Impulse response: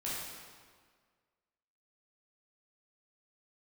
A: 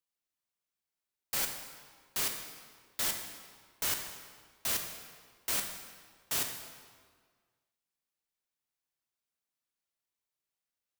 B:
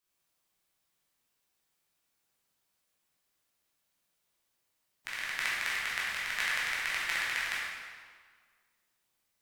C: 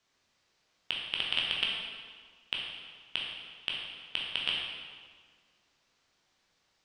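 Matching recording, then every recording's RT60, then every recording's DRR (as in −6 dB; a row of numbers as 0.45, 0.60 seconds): B; 1.7, 1.7, 1.7 seconds; 3.5, −8.0, −3.0 decibels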